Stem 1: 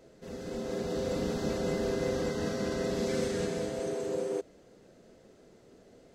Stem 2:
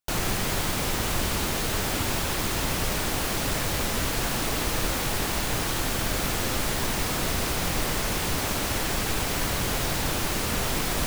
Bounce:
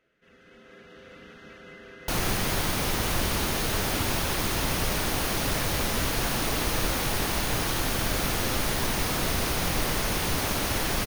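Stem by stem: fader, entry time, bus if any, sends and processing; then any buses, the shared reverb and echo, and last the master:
−18.0 dB, 0.00 s, no send, flat-topped bell 2,000 Hz +15.5 dB
0.0 dB, 2.00 s, no send, no processing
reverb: not used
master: notch filter 7,600 Hz, Q 7.4

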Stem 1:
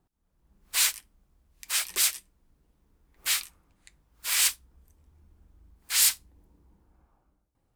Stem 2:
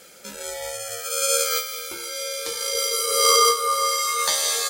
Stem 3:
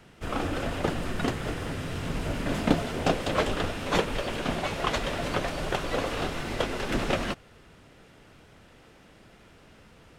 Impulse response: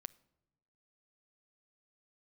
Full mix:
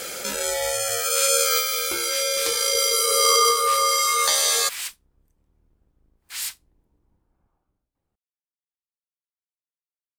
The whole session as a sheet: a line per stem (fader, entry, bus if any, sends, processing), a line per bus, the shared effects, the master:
−6.0 dB, 0.40 s, no send, sub-octave generator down 1 octave, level +3 dB; bass and treble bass −5 dB, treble −3 dB
−1.5 dB, 0.00 s, no send, parametric band 190 Hz −6 dB 0.88 octaves; notch filter 920 Hz, Q 28; envelope flattener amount 50%
muted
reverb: not used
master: no processing

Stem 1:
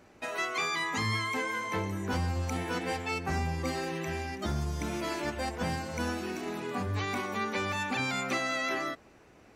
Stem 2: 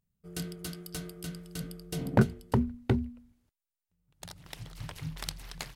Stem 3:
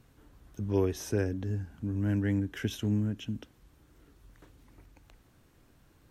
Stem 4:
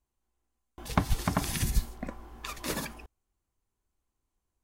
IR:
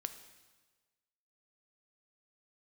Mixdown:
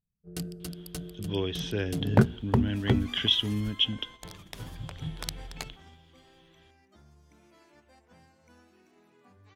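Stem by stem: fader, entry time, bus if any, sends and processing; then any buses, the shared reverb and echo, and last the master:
−18.0 dB, 2.50 s, no send, no processing
+1.5 dB, 0.00 s, send −18.5 dB, adaptive Wiener filter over 41 samples
−2.5 dB, 0.60 s, send −15.5 dB, high-shelf EQ 2,400 Hz +7 dB; speech leveller 0.5 s; low-pass with resonance 3,300 Hz, resonance Q 14
−18.5 dB, 1.90 s, no send, upward compression, threshold −30 dBFS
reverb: on, RT60 1.4 s, pre-delay 3 ms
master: noise gate −46 dBFS, range −8 dB

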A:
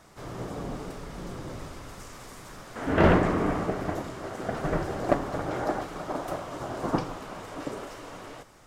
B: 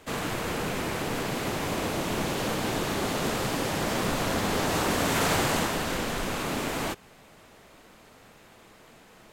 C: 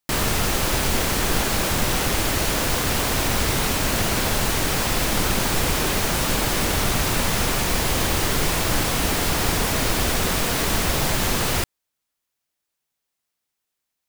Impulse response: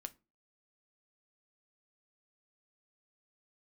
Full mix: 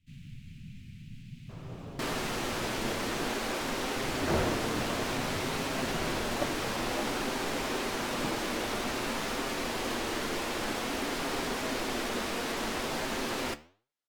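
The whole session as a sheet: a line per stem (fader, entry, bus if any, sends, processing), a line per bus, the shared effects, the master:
−6.5 dB, 1.30 s, no send, noise gate with hold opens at −35 dBFS
−10.5 dB, 0.00 s, muted 0:03.25–0:03.96, no send, Chebyshev band-stop filter 180–2,500 Hz, order 3; tilt shelving filter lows +7 dB
−0.5 dB, 1.90 s, no send, low shelf with overshoot 180 Hz −10.5 dB, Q 1.5; flanger 1.5 Hz, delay 6.7 ms, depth 7.4 ms, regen +85%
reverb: not used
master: high-shelf EQ 7,500 Hz −9 dB; flanger 0.53 Hz, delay 7.4 ms, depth 1.5 ms, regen −48%; linearly interpolated sample-rate reduction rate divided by 2×

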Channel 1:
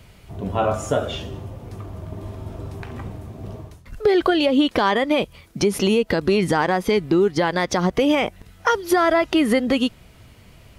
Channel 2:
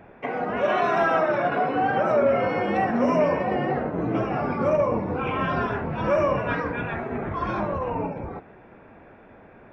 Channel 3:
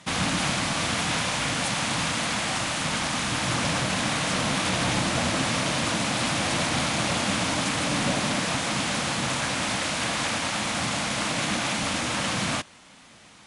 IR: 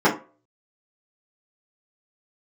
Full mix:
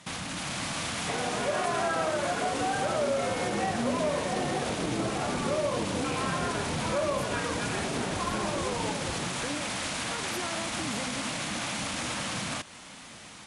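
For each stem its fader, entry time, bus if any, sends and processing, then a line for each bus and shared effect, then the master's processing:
−4.5 dB, 1.45 s, no send, brickwall limiter −17.5 dBFS, peak gain reduction 9 dB; amplitude modulation by smooth noise, depth 65%
+2.5 dB, 0.85 s, no send, no processing
−3.0 dB, 0.00 s, no send, high-shelf EQ 9,700 Hz +6 dB; brickwall limiter −22.5 dBFS, peak gain reduction 10.5 dB; automatic gain control gain up to 7 dB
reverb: not used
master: downward compressor 2 to 1, threshold −34 dBFS, peak gain reduction 11 dB

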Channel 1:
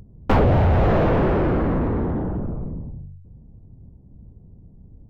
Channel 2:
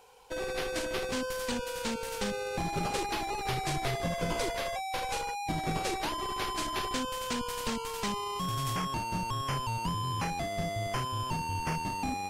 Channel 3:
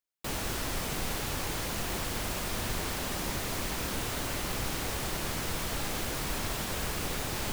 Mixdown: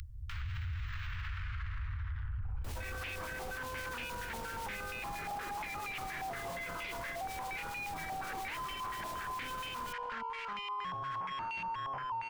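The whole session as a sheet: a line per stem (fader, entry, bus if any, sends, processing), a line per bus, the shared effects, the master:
0.0 dB, 0.00 s, bus A, no send, inverse Chebyshev band-stop filter 250–530 Hz, stop band 70 dB; low shelf with overshoot 140 Hz +10 dB, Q 1.5
−2.0 dB, 2.45 s, bus A, no send, low-pass on a step sequencer 8.5 Hz 800–2,500 Hz
−4.0 dB, 2.40 s, no bus, no send, two-band tremolo in antiphase 7.4 Hz, depth 50%, crossover 1,700 Hz
bus A: 0.0 dB, tilt shelving filter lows −9.5 dB; downward compressor, threshold −24 dBFS, peak gain reduction 10.5 dB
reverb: not used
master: brickwall limiter −32.5 dBFS, peak gain reduction 19.5 dB

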